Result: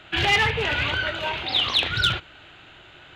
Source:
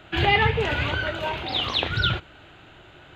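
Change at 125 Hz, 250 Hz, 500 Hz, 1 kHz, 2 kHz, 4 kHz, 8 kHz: -4.0 dB, -3.5 dB, -3.0 dB, -1.5 dB, +2.0 dB, +4.0 dB, n/a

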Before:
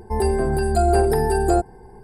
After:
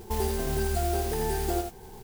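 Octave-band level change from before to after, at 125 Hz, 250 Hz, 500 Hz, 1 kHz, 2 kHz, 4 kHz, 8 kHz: -8.0, -9.5, -11.0, -10.5, -7.5, -1.0, -3.0 dB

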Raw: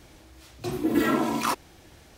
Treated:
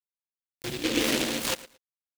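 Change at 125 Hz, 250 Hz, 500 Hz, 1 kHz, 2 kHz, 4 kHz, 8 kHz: -3.5, -5.5, -2.0, -9.5, +1.0, +8.5, +6.5 dB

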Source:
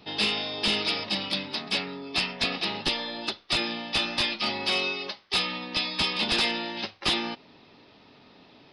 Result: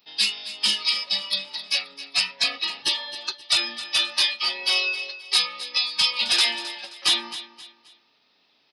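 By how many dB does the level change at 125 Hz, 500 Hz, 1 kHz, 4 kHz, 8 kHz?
under -10 dB, -7.5 dB, -2.5 dB, +5.0 dB, +10.5 dB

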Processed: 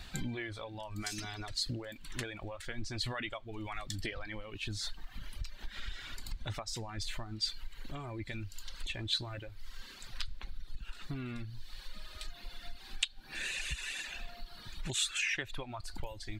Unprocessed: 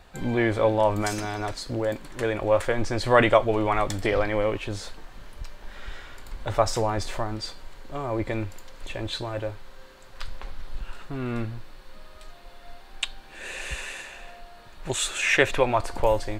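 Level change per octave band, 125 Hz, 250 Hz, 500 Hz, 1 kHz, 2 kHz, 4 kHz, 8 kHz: -10.5, -14.5, -23.5, -20.0, -11.0, -3.0, -6.0 dB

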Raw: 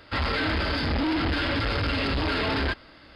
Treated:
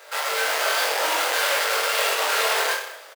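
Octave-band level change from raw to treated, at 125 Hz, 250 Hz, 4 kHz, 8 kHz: under -40 dB, -20.5 dB, +6.0 dB, n/a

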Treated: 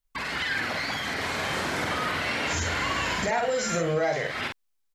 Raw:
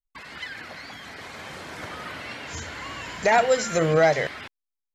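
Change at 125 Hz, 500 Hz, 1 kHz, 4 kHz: -1.0, -5.0, -2.0, +5.0 dB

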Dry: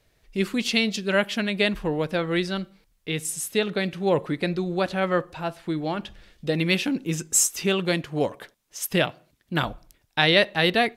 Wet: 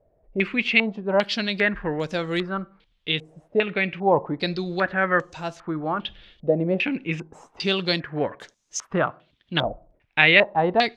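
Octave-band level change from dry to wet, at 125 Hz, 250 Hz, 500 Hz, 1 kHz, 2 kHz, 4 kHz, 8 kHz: -1.5, -1.0, +1.0, +3.5, +4.0, -0.5, -13.0 dB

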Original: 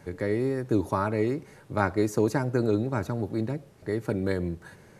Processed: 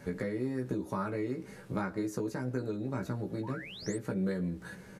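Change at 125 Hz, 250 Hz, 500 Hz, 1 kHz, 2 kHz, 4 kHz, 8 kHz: -7.0, -6.0, -9.0, -9.5, -7.5, -2.5, -4.0 dB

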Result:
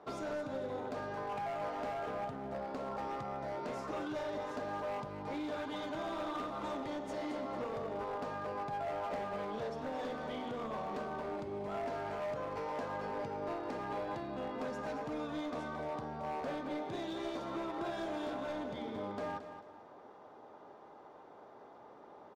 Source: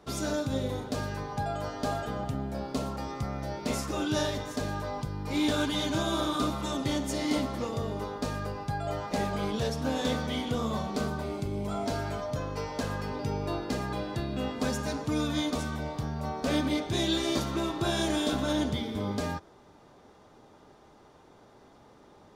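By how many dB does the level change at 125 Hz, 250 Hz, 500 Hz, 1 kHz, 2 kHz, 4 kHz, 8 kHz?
-16.5 dB, -11.5 dB, -5.0 dB, -4.0 dB, -8.0 dB, -16.5 dB, under -20 dB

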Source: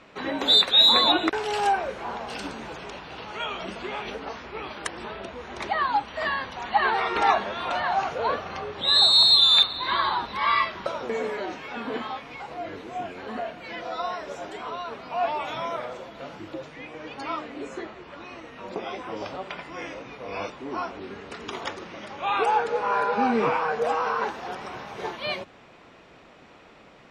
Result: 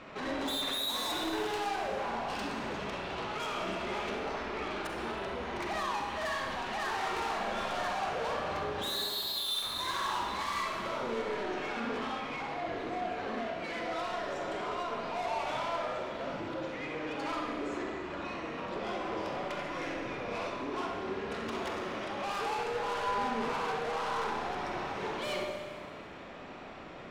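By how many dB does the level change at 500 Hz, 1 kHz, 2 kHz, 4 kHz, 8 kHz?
-5.0, -8.0, -6.5, -15.5, -2.5 dB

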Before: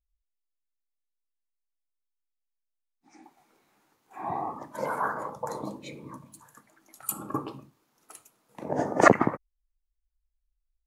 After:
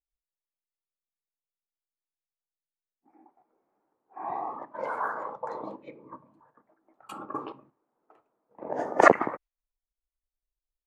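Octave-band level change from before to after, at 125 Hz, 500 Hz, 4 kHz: -11.0 dB, 0.0 dB, n/a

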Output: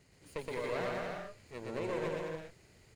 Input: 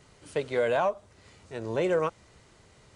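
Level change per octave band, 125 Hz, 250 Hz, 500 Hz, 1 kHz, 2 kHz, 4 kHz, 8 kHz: -5.5 dB, -6.5 dB, -9.5 dB, -9.5 dB, -6.5 dB, -5.5 dB, n/a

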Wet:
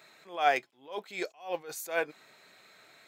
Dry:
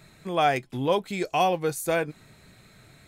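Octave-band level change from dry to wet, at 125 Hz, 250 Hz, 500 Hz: -25.5, -14.5, -8.5 dB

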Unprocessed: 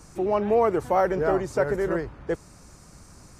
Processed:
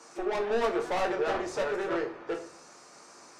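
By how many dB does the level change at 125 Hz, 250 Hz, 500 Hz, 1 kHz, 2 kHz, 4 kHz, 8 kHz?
-15.5 dB, -6.5 dB, -6.5 dB, -6.0 dB, -1.0 dB, n/a, -0.5 dB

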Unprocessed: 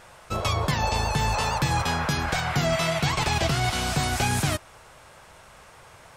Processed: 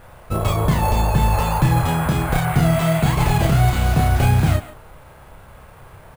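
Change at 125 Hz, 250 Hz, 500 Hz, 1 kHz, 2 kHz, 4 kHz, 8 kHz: +10.5, +9.0, +5.0, +4.0, +0.5, -3.0, -1.5 dB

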